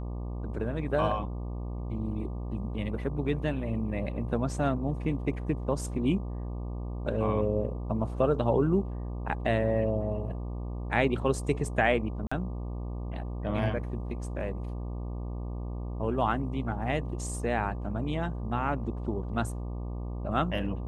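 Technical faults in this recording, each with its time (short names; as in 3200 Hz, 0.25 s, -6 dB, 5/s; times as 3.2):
buzz 60 Hz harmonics 20 -35 dBFS
12.27–12.31 gap 45 ms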